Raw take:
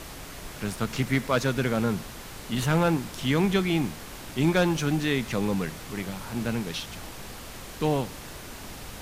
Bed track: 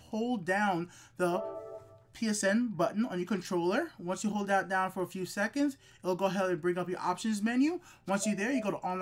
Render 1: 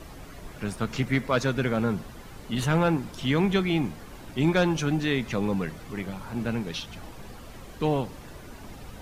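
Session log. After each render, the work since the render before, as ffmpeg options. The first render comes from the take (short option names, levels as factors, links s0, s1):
-af "afftdn=nr=10:nf=-42"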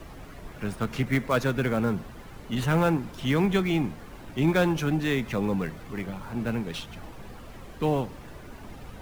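-filter_complex "[0:a]acrossover=split=410|820|3200[s0][s1][s2][s3];[s2]acrusher=bits=3:mode=log:mix=0:aa=0.000001[s4];[s3]aeval=exprs='max(val(0),0)':c=same[s5];[s0][s1][s4][s5]amix=inputs=4:normalize=0"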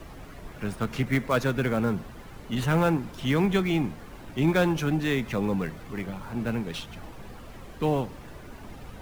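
-af anull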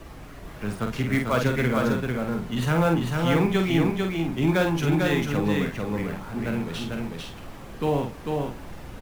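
-filter_complex "[0:a]asplit=2[s0][s1];[s1]adelay=48,volume=0.562[s2];[s0][s2]amix=inputs=2:normalize=0,aecho=1:1:446:0.668"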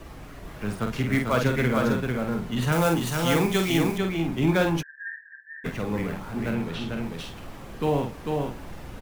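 -filter_complex "[0:a]asettb=1/sr,asplit=3[s0][s1][s2];[s0]atrim=end=2.724[s3];[s1]atrim=start=2.72:end=3.98,asetpts=PTS-STARTPTS,afade=t=in:d=0.004:c=qsin,afade=t=out:st=1.256:d=0.004:c=qsin,bass=f=250:g=-3,treble=f=4000:g=11[s4];[s2]atrim=start=3.976[s5];[s3][s4]acrossfade=d=0.004:c1=hsin:c2=qsin[s6];[s6][s5]acrossfade=d=0.004:c1=qsin:c2=hsin,asplit=3[s7][s8][s9];[s7]afade=t=out:st=4.81:d=0.02[s10];[s8]asuperpass=centerf=1700:order=12:qfactor=6,afade=t=in:st=4.81:d=0.02,afade=t=out:st=5.64:d=0.02[s11];[s9]afade=t=in:st=5.64:d=0.02[s12];[s10][s11][s12]amix=inputs=3:normalize=0,asettb=1/sr,asplit=3[s13][s14][s15];[s13]atrim=end=6.534[s16];[s14]atrim=start=6.53:end=7.06,asetpts=PTS-STARTPTS,afade=t=in:d=0.004:c=qsin,afade=t=out:st=0.526:d=0.004:c=qsin,acrossover=split=4600[s17][s18];[s18]acompressor=threshold=0.00224:ratio=4:attack=1:release=60[s19];[s17][s19]amix=inputs=2:normalize=0[s20];[s15]atrim=start=7.056[s21];[s16][s20]acrossfade=d=0.004:c1=hsin:c2=qsin[s22];[s22][s21]acrossfade=d=0.004:c1=qsin:c2=hsin"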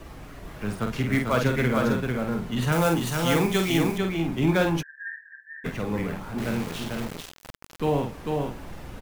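-filter_complex "[0:a]asettb=1/sr,asplit=3[s0][s1][s2];[s0]atrim=end=6.384[s3];[s1]atrim=start=6.38:end=7.8,asetpts=PTS-STARTPTS,afade=t=in:d=0.004:c=qsin,afade=t=out:st=1.416:d=0.004:c=qsin,aeval=exprs='val(0)*gte(abs(val(0)),0.0266)':c=same[s4];[s2]atrim=start=7.796[s5];[s3][s4]acrossfade=d=0.004:c1=hsin:c2=qsin[s6];[s6][s5]acrossfade=d=0.004:c1=qsin:c2=hsin"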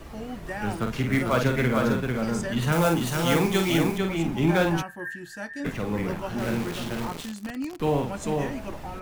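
-filter_complex "[1:a]volume=0.596[s0];[0:a][s0]amix=inputs=2:normalize=0"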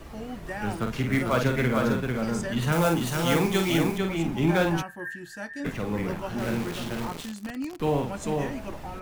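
-af "volume=0.891"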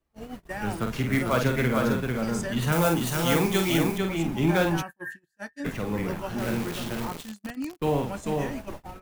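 -af "agate=range=0.0158:threshold=0.0178:ratio=16:detection=peak,highshelf=f=9900:g=6.5"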